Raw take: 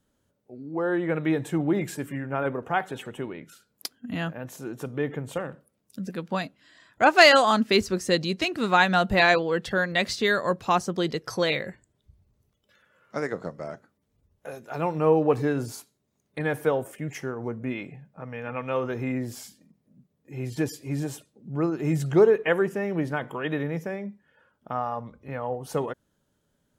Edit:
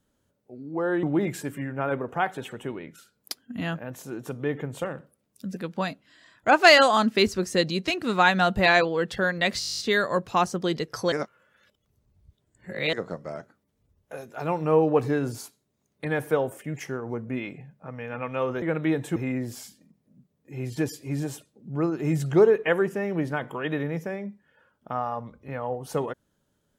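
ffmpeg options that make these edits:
-filter_complex "[0:a]asplit=16[s0][s1][s2][s3][s4][s5][s6][s7][s8][s9][s10][s11][s12][s13][s14][s15];[s0]atrim=end=1.032[s16];[s1]atrim=start=1.568:end=10.152[s17];[s2]atrim=start=10.128:end=10.152[s18];[s3]atrim=start=10.128:end=10.152[s19];[s4]atrim=start=10.128:end=10.152[s20];[s5]atrim=start=10.128:end=10.152[s21];[s6]atrim=start=10.128:end=10.152[s22];[s7]atrim=start=10.128:end=10.152[s23];[s8]atrim=start=10.128:end=10.152[s24];[s9]atrim=start=10.128:end=10.152[s25];[s10]atrim=start=10.128:end=10.152[s26];[s11]atrim=start=10.128:end=11.462[s27];[s12]atrim=start=11.458:end=13.272,asetpts=PTS-STARTPTS,areverse[s28];[s13]atrim=start=13.268:end=18.962[s29];[s14]atrim=start=1.028:end=1.572[s30];[s15]atrim=start=18.958[s31];[s16][s17]acrossfade=d=0.004:c1=hsin:c2=hsin[s32];[s32][s18]acrossfade=d=0.004:c1=hsin:c2=hsin[s33];[s33][s19]acrossfade=d=0.004:c1=hsin:c2=hsin[s34];[s34][s20]acrossfade=d=0.004:c1=hsin:c2=hsin[s35];[s35][s21]acrossfade=d=0.004:c1=hsin:c2=hsin[s36];[s36][s22]acrossfade=d=0.004:c1=hsin:c2=hsin[s37];[s37][s23]acrossfade=d=0.004:c1=hsin:c2=hsin[s38];[s38][s24]acrossfade=d=0.004:c1=hsin:c2=hsin[s39];[s39][s25]acrossfade=d=0.004:c1=hsin:c2=hsin[s40];[s40][s26]acrossfade=d=0.004:c1=hsin:c2=hsin[s41];[s41][s27]acrossfade=d=0.004:c1=hsin:c2=hsin[s42];[s42][s28]acrossfade=d=0.004:c1=hsin:c2=hsin[s43];[s43][s29]acrossfade=d=0.004:c1=hsin:c2=hsin[s44];[s44][s30]acrossfade=d=0.004:c1=hsin:c2=hsin[s45];[s45][s31]acrossfade=d=0.004:c1=hsin:c2=hsin"

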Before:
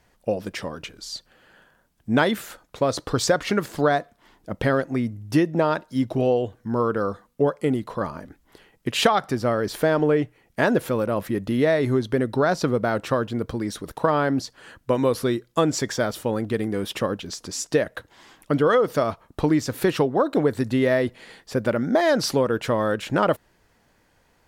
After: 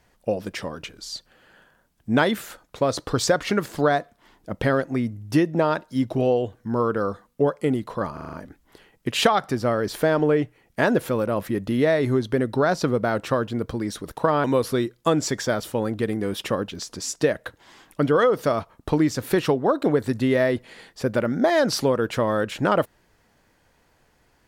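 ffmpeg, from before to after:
-filter_complex "[0:a]asplit=7[s0][s1][s2][s3][s4][s5][s6];[s0]atrim=end=8.172[s7];[s1]atrim=start=8.128:end=8.172[s8];[s2]atrim=start=8.128:end=8.172[s9];[s3]atrim=start=8.128:end=8.172[s10];[s4]atrim=start=8.128:end=8.172[s11];[s5]atrim=start=8.128:end=14.242[s12];[s6]atrim=start=14.948[s13];[s7][s8]acrossfade=d=0.004:c1=hsin:c2=hsin[s14];[s14][s9]acrossfade=d=0.004:c1=hsin:c2=hsin[s15];[s15][s10]acrossfade=d=0.004:c1=hsin:c2=hsin[s16];[s16][s11]acrossfade=d=0.004:c1=hsin:c2=hsin[s17];[s17][s12]acrossfade=d=0.004:c1=hsin:c2=hsin[s18];[s18][s13]acrossfade=d=0.004:c1=hsin:c2=hsin"

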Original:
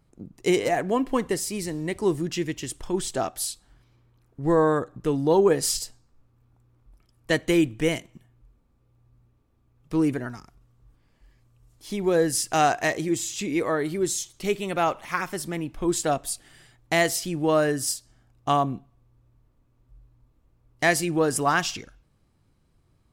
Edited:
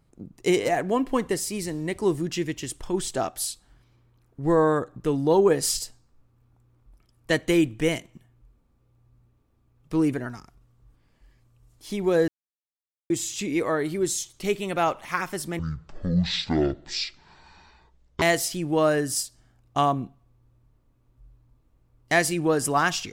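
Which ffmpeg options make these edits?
-filter_complex "[0:a]asplit=5[s0][s1][s2][s3][s4];[s0]atrim=end=12.28,asetpts=PTS-STARTPTS,afade=t=out:st=12.276:d=0.004:c=hsin[s5];[s1]atrim=start=12.28:end=13.1,asetpts=PTS-STARTPTS,volume=0[s6];[s2]atrim=start=13.1:end=15.594,asetpts=PTS-STARTPTS,afade=t=in:d=0.004:c=hsin[s7];[s3]atrim=start=15.59:end=16.93,asetpts=PTS-STARTPTS,asetrate=22491,aresample=44100[s8];[s4]atrim=start=16.926[s9];[s5][s6][s7]concat=n=3:v=0:a=1[s10];[s10][s8]acrossfade=d=0.004:c1=hsin:c2=hsin[s11];[s11][s9]acrossfade=d=0.004:c1=hsin:c2=hsin"

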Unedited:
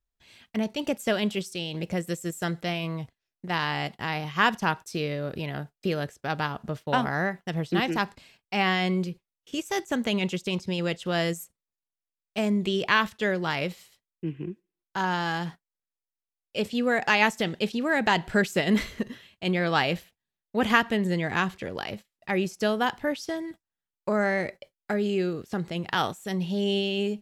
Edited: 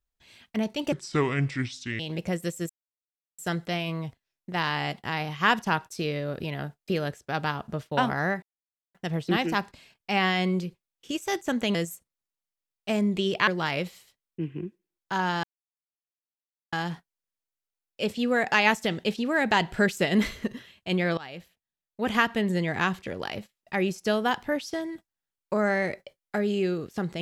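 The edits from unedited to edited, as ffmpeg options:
-filter_complex "[0:a]asplit=9[s0][s1][s2][s3][s4][s5][s6][s7][s8];[s0]atrim=end=0.924[s9];[s1]atrim=start=0.92:end=1.64,asetpts=PTS-STARTPTS,asetrate=29547,aresample=44100,atrim=end_sample=47391,asetpts=PTS-STARTPTS[s10];[s2]atrim=start=1.636:end=2.34,asetpts=PTS-STARTPTS,afade=t=out:st=0.7:d=0.004:c=hsin,apad=pad_dur=0.69[s11];[s3]atrim=start=2.34:end=7.38,asetpts=PTS-STARTPTS,afade=t=in:d=0.004:c=hsin,afade=t=out:st=5.036:d=0.004:c=hsin,apad=pad_dur=0.52[s12];[s4]atrim=start=7.38:end=10.182,asetpts=PTS-STARTPTS,afade=t=in:d=0.004:c=hsin[s13];[s5]atrim=start=11.228:end=12.962[s14];[s6]atrim=start=13.318:end=15.28,asetpts=PTS-STARTPTS,afade=t=out:st=1.958:d=0.004:c=hsin,apad=pad_dur=1.29[s15];[s7]atrim=start=15.28:end=19.73,asetpts=PTS-STARTPTS,afade=t=in:d=0.004:c=hsin,afade=t=out:st=4.446:d=0.004:c=hsin:silence=0.0794328[s16];[s8]atrim=start=19.73,asetpts=PTS-STARTPTS,afade=t=in:d=1.32:silence=0.0794328[s17];[s9][s10]acrossfade=d=0.004:c1=hsin:c2=hsin[s18];[s11][s12][s13]concat=n=3:v=0:a=1[s19];[s18][s19]acrossfade=d=0.004:c1=hsin:c2=hsin[s20];[s20][s14]acrossfade=d=0.004:c1=hsin:c2=hsin[s21];[s15][s16][s17]concat=n=3:v=0:a=1[s22];[s21][s22]acrossfade=d=0.004:c1=hsin:c2=hsin"

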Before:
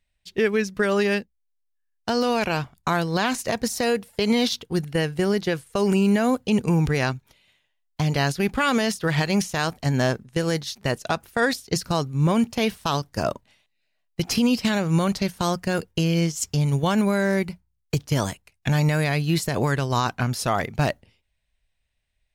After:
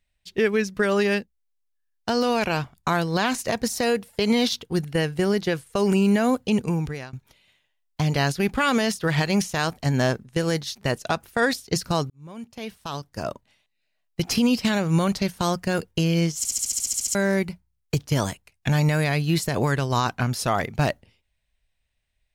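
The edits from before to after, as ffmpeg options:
-filter_complex "[0:a]asplit=14[s0][s1][s2][s3][s4][s5][s6][s7][s8][s9][s10][s11][s12][s13];[s0]atrim=end=7.13,asetpts=PTS-STARTPTS,afade=t=out:st=6.47:d=0.66:silence=0.0630957[s14];[s1]atrim=start=7.13:end=12.1,asetpts=PTS-STARTPTS,afade=t=in:d=0.004:c=hsin:silence=0.0630957,afade=t=out:st=4.966:d=0.004:c=hsin[s15];[s2]atrim=start=12.1:end=16.452,asetpts=PTS-STARTPTS,afade=t=in:d=2.1[s16];[s3]atrim=start=16.378:end=16.452[s17];[s4]atrim=start=16.378:end=16.452[s18];[s5]atrim=start=16.378:end=16.452[s19];[s6]atrim=start=16.378:end=16.452[s20];[s7]atrim=start=16.378:end=16.452[s21];[s8]atrim=start=16.378:end=16.452[s22];[s9]atrim=start=16.378:end=16.452[s23];[s10]atrim=start=16.378:end=16.452[s24];[s11]atrim=start=16.378:end=16.452[s25];[s12]atrim=start=16.378:end=16.452[s26];[s13]atrim=start=17.148[s27];[s14][s15][s16]concat=n=3:v=0:a=1[s28];[s28][s17]acrossfade=d=0.004:c1=hsin:c2=hsin[s29];[s29][s18]acrossfade=d=0.004:c1=hsin:c2=hsin[s30];[s30][s19]acrossfade=d=0.004:c1=hsin:c2=hsin[s31];[s31][s20]acrossfade=d=0.004:c1=hsin:c2=hsin[s32];[s32][s21]acrossfade=d=0.004:c1=hsin:c2=hsin[s33];[s33][s22]acrossfade=d=0.004:c1=hsin:c2=hsin[s34];[s34][s23]acrossfade=d=0.004:c1=hsin:c2=hsin[s35];[s35][s24]acrossfade=d=0.004:c1=hsin:c2=hsin[s36];[s36][s25]acrossfade=d=0.004:c1=hsin:c2=hsin[s37];[s37][s26]acrossfade=d=0.004:c1=hsin:c2=hsin[s38];[s38][s27]acrossfade=d=0.004:c1=hsin:c2=hsin"

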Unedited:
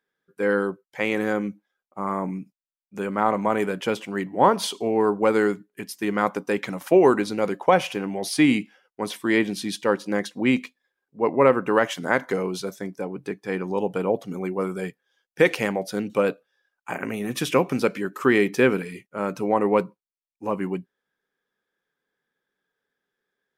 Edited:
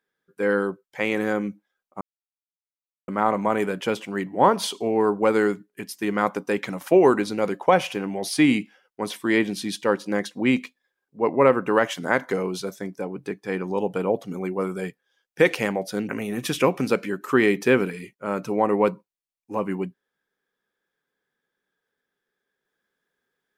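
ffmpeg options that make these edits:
-filter_complex "[0:a]asplit=4[s0][s1][s2][s3];[s0]atrim=end=2.01,asetpts=PTS-STARTPTS,afade=t=out:st=2.006:d=0.004:c=hsin[s4];[s1]atrim=start=2.01:end=3.08,asetpts=PTS-STARTPTS,volume=0[s5];[s2]atrim=start=3.08:end=16.092,asetpts=PTS-STARTPTS,afade=t=in:d=0.004:c=hsin[s6];[s3]atrim=start=17.008[s7];[s4][s5][s6]concat=n=3:v=0:a=1[s8];[s8][s7]acrossfade=d=0.004:c1=hsin:c2=hsin"

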